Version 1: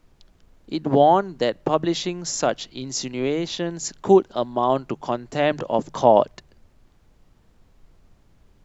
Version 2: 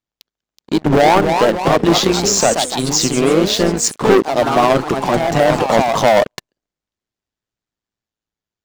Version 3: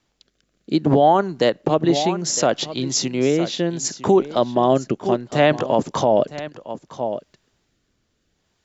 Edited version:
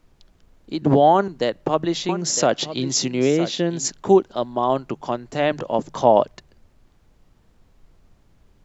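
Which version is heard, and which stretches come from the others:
1
0:00.82–0:01.28: punch in from 3
0:02.09–0:03.90: punch in from 3
not used: 2

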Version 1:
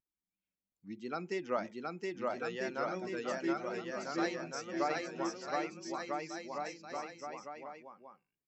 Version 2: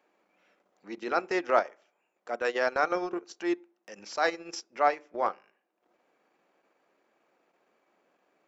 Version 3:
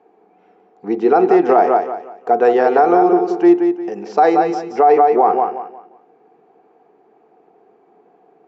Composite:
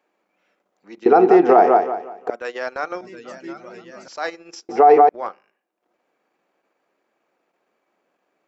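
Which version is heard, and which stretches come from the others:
2
0:01.06–0:02.30: punch in from 3
0:03.01–0:04.08: punch in from 1
0:04.69–0:05.09: punch in from 3

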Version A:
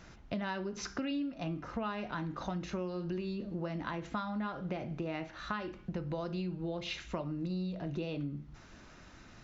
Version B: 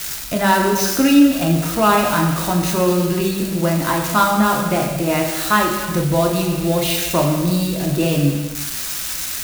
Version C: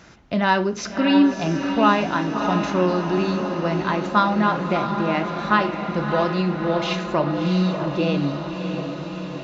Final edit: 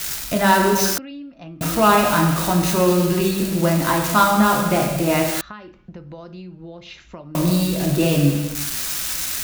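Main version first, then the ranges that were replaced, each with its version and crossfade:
B
0:00.98–0:01.61: punch in from A
0:05.41–0:07.35: punch in from A
not used: C

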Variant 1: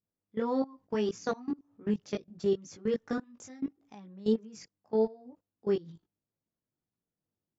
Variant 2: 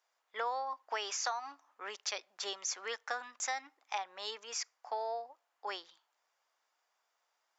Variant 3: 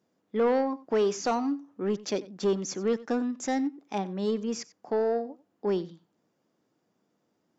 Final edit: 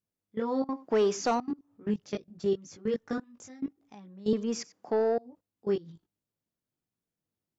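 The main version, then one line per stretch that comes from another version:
1
0:00.69–0:01.40: punch in from 3
0:04.33–0:05.18: punch in from 3
not used: 2

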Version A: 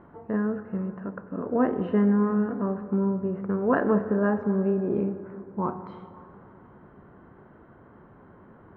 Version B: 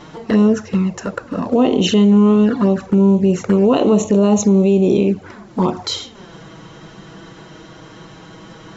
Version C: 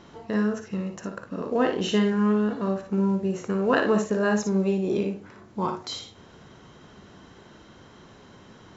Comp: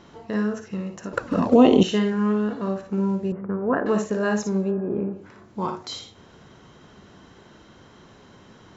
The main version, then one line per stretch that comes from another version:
C
0:01.13–0:01.83: punch in from B
0:03.32–0:03.86: punch in from A
0:04.65–0:05.19: punch in from A, crossfade 0.16 s

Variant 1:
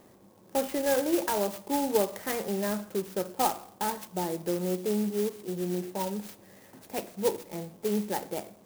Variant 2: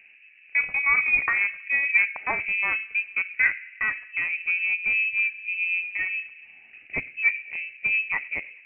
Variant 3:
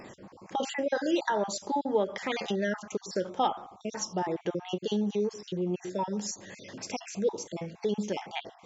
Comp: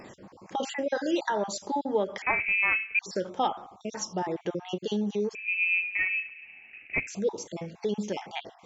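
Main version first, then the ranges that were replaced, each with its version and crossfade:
3
0:02.22–0:02.99: punch in from 2
0:05.35–0:07.07: punch in from 2
not used: 1

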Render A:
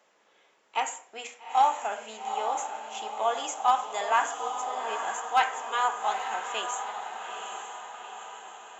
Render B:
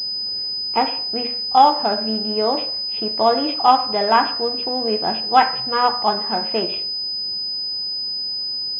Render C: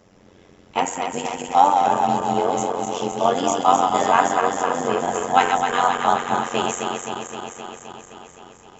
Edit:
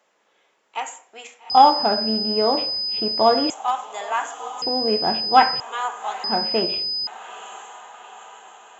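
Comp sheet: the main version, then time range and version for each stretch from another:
A
0:01.50–0:03.50: punch in from B
0:04.62–0:05.60: punch in from B
0:06.24–0:07.07: punch in from B
not used: C

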